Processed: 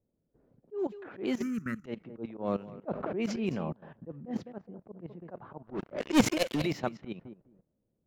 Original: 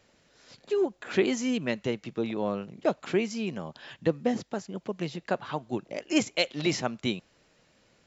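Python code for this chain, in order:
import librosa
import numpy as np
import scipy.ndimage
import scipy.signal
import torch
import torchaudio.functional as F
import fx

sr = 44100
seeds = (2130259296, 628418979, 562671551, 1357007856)

y = scipy.ndimage.median_filter(x, 5, mode='constant')
y = fx.high_shelf(y, sr, hz=2200.0, db=-6.0)
y = fx.echo_feedback(y, sr, ms=208, feedback_pct=20, wet_db=-15.5)
y = fx.leveller(y, sr, passes=5, at=(5.67, 6.62))
y = fx.level_steps(y, sr, step_db=16)
y = fx.auto_swell(y, sr, attack_ms=126.0)
y = fx.env_lowpass(y, sr, base_hz=360.0, full_db=-32.0)
y = fx.curve_eq(y, sr, hz=(210.0, 840.0, 1300.0, 3500.0, 5600.0, 9000.0), db=(0, -27, 12, -24, -4, 3), at=(1.42, 1.85))
y = fx.env_flatten(y, sr, amount_pct=70, at=(2.88, 3.73))
y = F.gain(torch.from_numpy(y), 3.5).numpy()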